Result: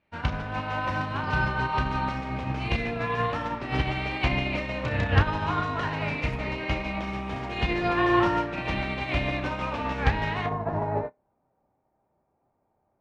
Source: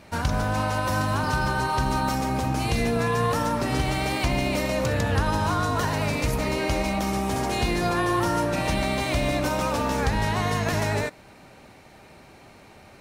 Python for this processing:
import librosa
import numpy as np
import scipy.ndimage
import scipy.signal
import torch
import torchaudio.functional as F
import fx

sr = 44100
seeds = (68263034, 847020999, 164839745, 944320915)

y = fx.lowpass_res(x, sr, hz=fx.steps((0.0, 2700.0), (10.46, 870.0)), q=1.7)
y = fx.room_flutter(y, sr, wall_m=5.4, rt60_s=0.23)
y = fx.upward_expand(y, sr, threshold_db=-37.0, expansion=2.5)
y = y * 10.0 ** (3.5 / 20.0)